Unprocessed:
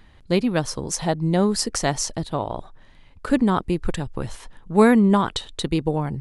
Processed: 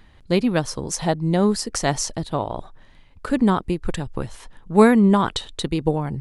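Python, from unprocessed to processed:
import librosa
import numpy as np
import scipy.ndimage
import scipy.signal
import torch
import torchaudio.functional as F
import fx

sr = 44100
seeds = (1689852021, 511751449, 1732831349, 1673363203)

y = fx.am_noise(x, sr, seeds[0], hz=5.7, depth_pct=60)
y = y * librosa.db_to_amplitude(3.0)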